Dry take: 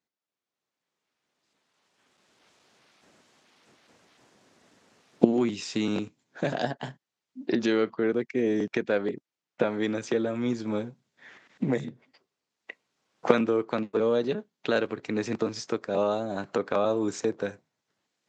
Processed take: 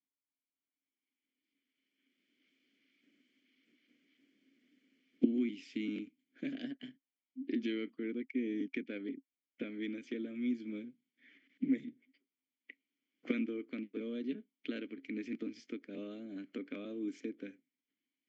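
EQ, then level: vowel filter i; bell 100 Hz -8 dB 1.1 oct; notch 3800 Hz, Q 9.8; +1.0 dB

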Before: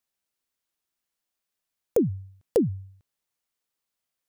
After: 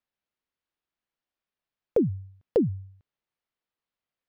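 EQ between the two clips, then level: air absorption 310 m; high shelf 6800 Hz +11 dB; 0.0 dB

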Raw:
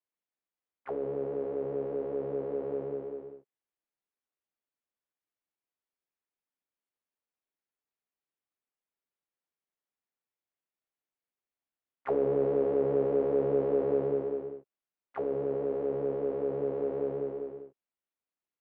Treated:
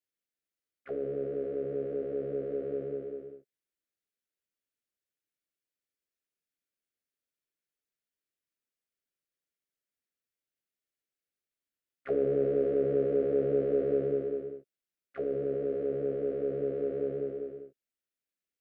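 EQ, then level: Butterworth band-stop 920 Hz, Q 1.3; 0.0 dB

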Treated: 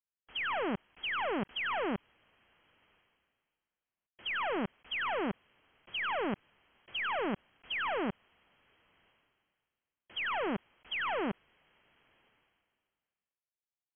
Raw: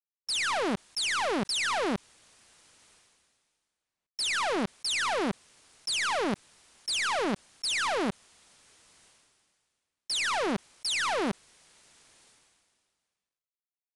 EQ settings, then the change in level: brick-wall FIR low-pass 3300 Hz; -4.5 dB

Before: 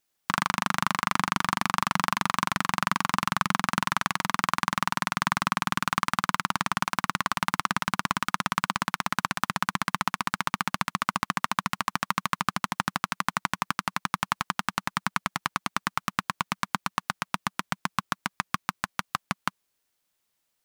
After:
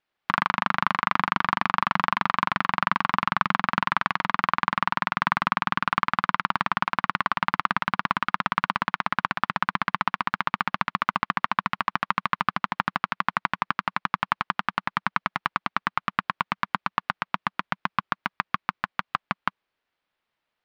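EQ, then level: air absorption 360 m; low shelf 470 Hz -8.5 dB; +6.5 dB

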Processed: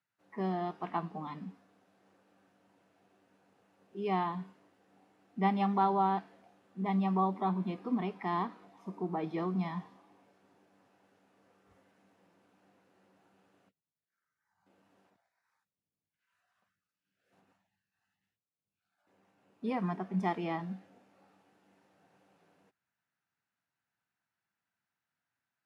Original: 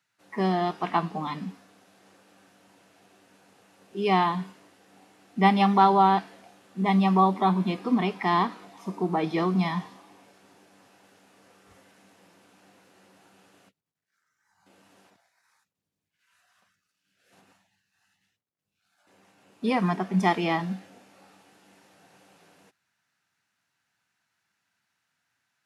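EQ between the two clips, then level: high shelf 2500 Hz -11.5 dB; -8.5 dB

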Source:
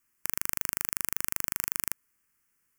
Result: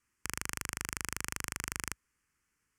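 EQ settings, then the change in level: LPF 7500 Hz 12 dB/oct; bell 61 Hz +8 dB 1.5 oct; 0.0 dB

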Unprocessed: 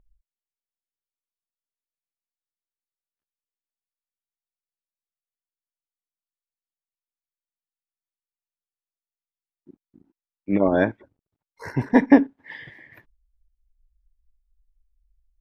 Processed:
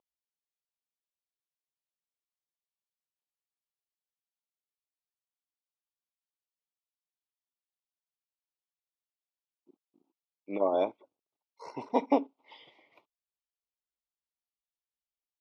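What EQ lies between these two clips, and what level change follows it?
BPF 550–5000 Hz; Butterworth band-stop 1700 Hz, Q 1.3; -3.0 dB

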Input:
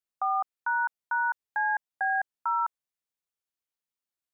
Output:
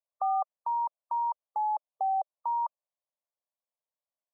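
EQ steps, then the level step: brick-wall FIR band-pass 460–1200 Hz; bell 610 Hz +8 dB 0.4 oct; 0.0 dB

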